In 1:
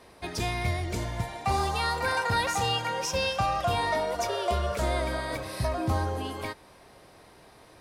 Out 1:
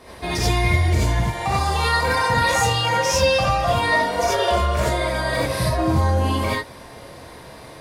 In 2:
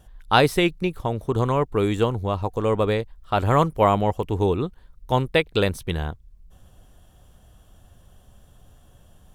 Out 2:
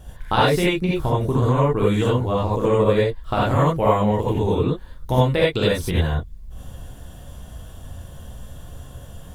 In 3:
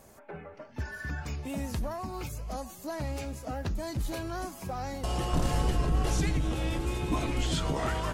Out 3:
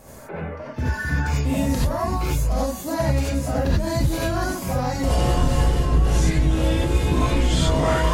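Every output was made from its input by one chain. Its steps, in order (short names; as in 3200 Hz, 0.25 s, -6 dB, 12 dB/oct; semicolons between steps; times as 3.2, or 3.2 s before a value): low shelf 380 Hz +4 dB; compressor 4:1, threshold -28 dBFS; non-linear reverb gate 0.11 s rising, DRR -6.5 dB; gain +5 dB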